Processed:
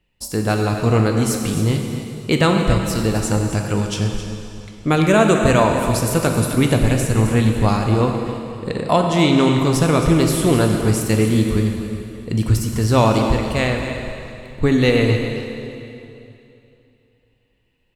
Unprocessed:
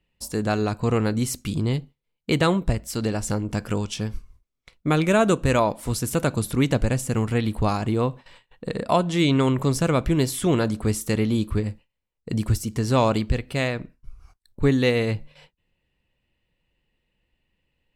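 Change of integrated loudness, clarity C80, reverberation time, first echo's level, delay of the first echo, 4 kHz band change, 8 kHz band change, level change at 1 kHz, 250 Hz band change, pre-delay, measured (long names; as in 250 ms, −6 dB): +5.5 dB, 4.0 dB, 2.8 s, −11.5 dB, 266 ms, +6.0 dB, +6.0 dB, +6.0 dB, +6.0 dB, 6 ms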